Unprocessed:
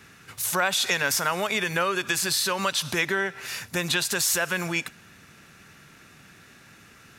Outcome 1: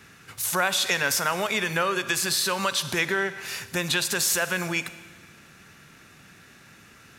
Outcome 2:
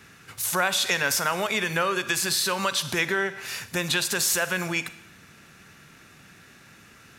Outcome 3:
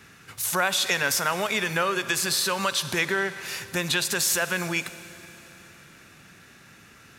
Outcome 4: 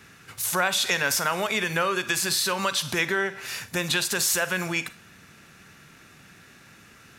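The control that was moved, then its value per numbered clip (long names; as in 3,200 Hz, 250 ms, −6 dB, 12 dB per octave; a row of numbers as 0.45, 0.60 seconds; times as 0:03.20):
four-comb reverb, RT60: 1.6, 0.78, 3.9, 0.32 seconds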